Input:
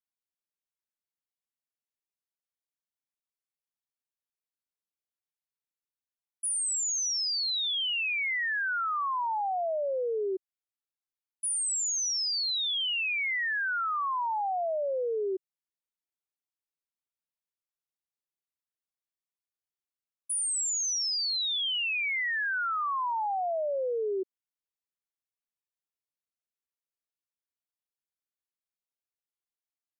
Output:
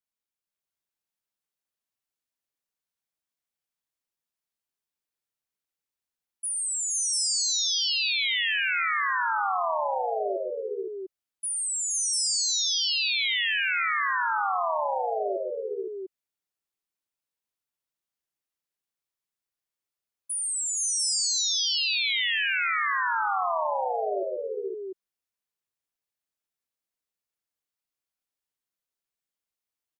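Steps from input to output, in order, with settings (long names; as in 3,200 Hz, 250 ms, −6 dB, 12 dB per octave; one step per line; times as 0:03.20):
dynamic equaliser 480 Hz, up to −4 dB, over −41 dBFS, Q 2.7
multi-tap delay 106/138/367/471/512/696 ms −18.5/−9/−13.5/−5/−3.5/−3.5 dB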